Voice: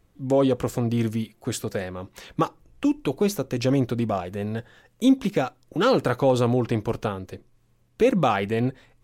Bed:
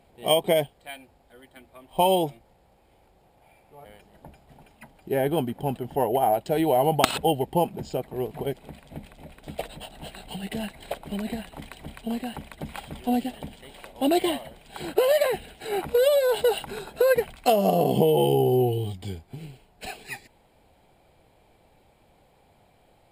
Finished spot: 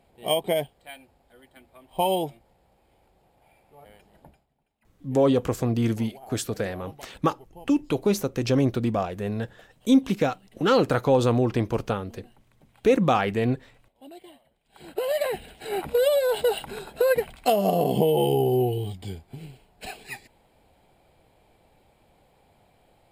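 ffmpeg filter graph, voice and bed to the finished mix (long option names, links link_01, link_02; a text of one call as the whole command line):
ffmpeg -i stem1.wav -i stem2.wav -filter_complex "[0:a]adelay=4850,volume=0dB[link_01];[1:a]volume=19.5dB,afade=type=out:start_time=4.19:duration=0.31:silence=0.0944061,afade=type=in:start_time=14.63:duration=0.83:silence=0.0749894[link_02];[link_01][link_02]amix=inputs=2:normalize=0" out.wav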